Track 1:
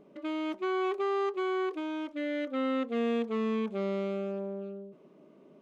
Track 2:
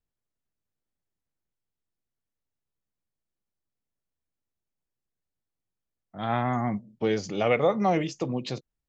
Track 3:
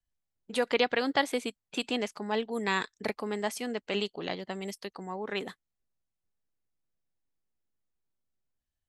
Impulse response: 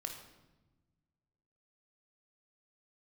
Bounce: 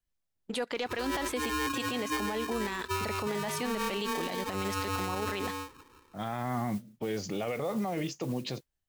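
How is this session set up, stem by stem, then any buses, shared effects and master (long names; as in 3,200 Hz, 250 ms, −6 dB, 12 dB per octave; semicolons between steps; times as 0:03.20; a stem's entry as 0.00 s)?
−5.0 dB, 0.75 s, bus A, no send, auto-filter low-pass sine 5.9 Hz 680–1,800 Hz; ring modulator with a square carrier 680 Hz; automatic ducking −14 dB, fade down 0.55 s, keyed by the second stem
−11.5 dB, 0.00 s, bus A, no send, noise that follows the level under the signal 22 dB
+2.5 dB, 0.00 s, no bus, no send, leveller curve on the samples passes 1
bus A: 0.0 dB, automatic gain control gain up to 10.5 dB; brickwall limiter −23.5 dBFS, peak gain reduction 11.5 dB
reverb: not used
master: brickwall limiter −24.5 dBFS, peak gain reduction 16 dB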